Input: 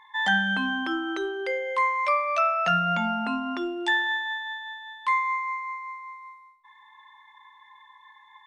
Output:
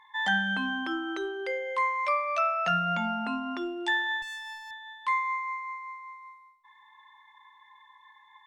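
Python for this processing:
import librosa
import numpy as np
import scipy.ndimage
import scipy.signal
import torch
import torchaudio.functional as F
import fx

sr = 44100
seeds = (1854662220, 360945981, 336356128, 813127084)

y = fx.clip_asym(x, sr, top_db=-42.0, bottom_db=-29.0, at=(4.22, 4.71))
y = F.gain(torch.from_numpy(y), -3.5).numpy()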